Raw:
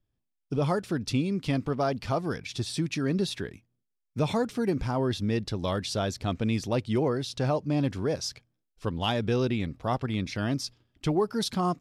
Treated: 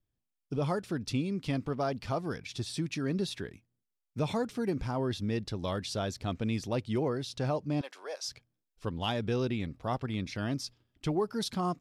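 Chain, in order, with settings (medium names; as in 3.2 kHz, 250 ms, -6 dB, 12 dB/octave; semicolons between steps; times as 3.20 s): 7.81–8.28 s: high-pass 570 Hz 24 dB/octave; trim -4.5 dB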